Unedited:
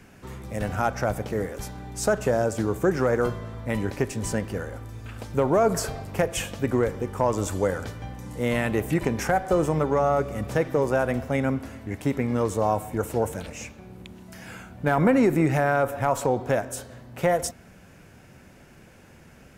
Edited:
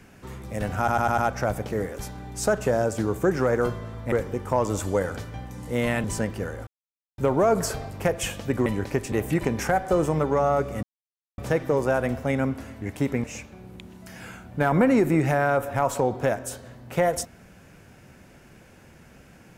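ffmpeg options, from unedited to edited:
-filter_complex "[0:a]asplit=13[s0][s1][s2][s3][s4][s5][s6][s7][s8][s9][s10][s11][s12];[s0]atrim=end=0.882[s13];[s1]atrim=start=0.778:end=0.882[s14];[s2]atrim=start=0.778:end=0.882[s15];[s3]atrim=start=0.778:end=0.882[s16];[s4]atrim=start=0.778:end=3.722[s17];[s5]atrim=start=6.798:end=8.722[s18];[s6]atrim=start=4.178:end=4.81,asetpts=PTS-STARTPTS,afade=t=out:st=0.628:d=0.004:c=hsin[s19];[s7]atrim=start=4.81:end=5.32,asetpts=PTS-STARTPTS,volume=0[s20];[s8]atrim=start=5.32:end=6.802,asetpts=PTS-STARTPTS,afade=t=in:d=0.004:c=hsin[s21];[s9]atrim=start=3.718:end=4.182[s22];[s10]atrim=start=8.718:end=10.43,asetpts=PTS-STARTPTS,afade=t=out:st=1.708:d=0.004:c=hsin,apad=pad_dur=0.55[s23];[s11]atrim=start=10.43:end=12.292,asetpts=PTS-STARTPTS,afade=t=in:d=0.004:c=hsin[s24];[s12]atrim=start=13.498[s25];[s13][s14]acrossfade=d=0.004:c1=hsin:c2=hsin[s26];[s26][s15]acrossfade=d=0.004:c1=hsin:c2=hsin[s27];[s27][s16]acrossfade=d=0.004:c1=hsin:c2=hsin[s28];[s28][s17]acrossfade=d=0.004:c1=hsin:c2=hsin[s29];[s29][s18]acrossfade=d=0.004:c1=hsin:c2=hsin[s30];[s19][s20][s21]concat=n=3:v=0:a=1[s31];[s30][s31]acrossfade=d=0.004:c1=hsin:c2=hsin[s32];[s32][s22]acrossfade=d=0.004:c1=hsin:c2=hsin[s33];[s23][s24]concat=n=2:v=0:a=1[s34];[s33][s34]acrossfade=d=0.004:c1=hsin:c2=hsin[s35];[s35][s25]acrossfade=d=0.004:c1=hsin:c2=hsin"

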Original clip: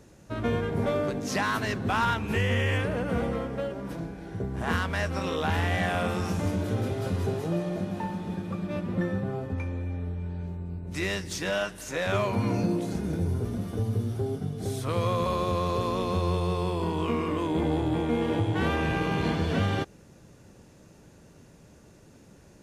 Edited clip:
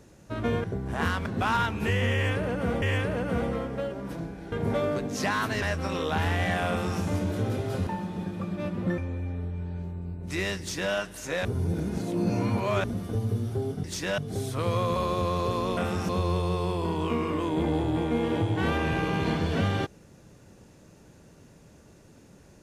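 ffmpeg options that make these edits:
-filter_complex "[0:a]asplit=14[s0][s1][s2][s3][s4][s5][s6][s7][s8][s9][s10][s11][s12][s13];[s0]atrim=end=0.642[s14];[s1]atrim=start=4.318:end=4.942[s15];[s2]atrim=start=1.738:end=3.302[s16];[s3]atrim=start=2.618:end=4.322[s17];[s4]atrim=start=0.638:end=1.742[s18];[s5]atrim=start=4.938:end=7.192[s19];[s6]atrim=start=7.978:end=9.092[s20];[s7]atrim=start=9.618:end=12.092[s21];[s8]atrim=start=12.088:end=13.482,asetpts=PTS-STARTPTS,areverse[s22];[s9]atrim=start=13.478:end=14.482[s23];[s10]atrim=start=11.228:end=11.572[s24];[s11]atrim=start=14.478:end=16.072[s25];[s12]atrim=start=6.008:end=6.332[s26];[s13]atrim=start=16.068[s27];[s14][s15]acrossfade=d=0.004:c1=hsin:c2=hsin[s28];[s28][s16]acrossfade=d=0.004:c1=hsin:c2=hsin[s29];[s29][s17]acrossfade=d=0.004:c1=hsin:c2=hsin[s30];[s30][s18]acrossfade=d=0.004:c1=hsin:c2=hsin[s31];[s31][s19]acrossfade=d=0.004:c1=hsin:c2=hsin[s32];[s32][s20]acrossfade=d=0.004:c1=hsin:c2=hsin[s33];[s33][s21]acrossfade=d=0.004:c1=hsin:c2=hsin[s34];[s34][s22]acrossfade=d=0.004:c1=hsin:c2=hsin[s35];[s35][s23]acrossfade=d=0.004:c1=hsin:c2=hsin[s36];[s36][s24]acrossfade=d=0.004:c1=hsin:c2=hsin[s37];[s37][s25]acrossfade=d=0.004:c1=hsin:c2=hsin[s38];[s38][s26]acrossfade=d=0.004:c1=hsin:c2=hsin[s39];[s39][s27]acrossfade=d=0.004:c1=hsin:c2=hsin"

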